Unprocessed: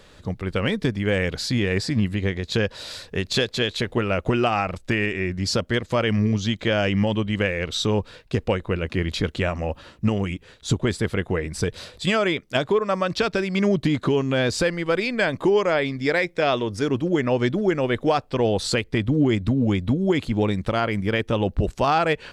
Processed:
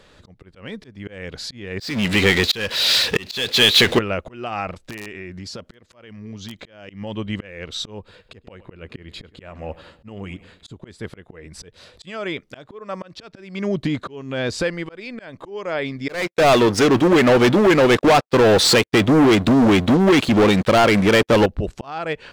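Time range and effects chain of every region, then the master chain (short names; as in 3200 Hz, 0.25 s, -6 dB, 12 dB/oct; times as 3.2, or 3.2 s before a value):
1.8–3.99 weighting filter D + power-law curve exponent 0.5
4.73–6.89 low shelf 120 Hz -4 dB + compressor 4:1, threshold -30 dBFS + wrapped overs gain 22 dB
7.98–10.75 notch 5800 Hz, Q 5.2 + feedback echo 0.103 s, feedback 51%, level -22 dB
16.09–21.46 HPF 290 Hz 6 dB/oct + sample leveller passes 5 + expander -21 dBFS
whole clip: low shelf 160 Hz -3.5 dB; auto swell 0.411 s; high shelf 7300 Hz -6.5 dB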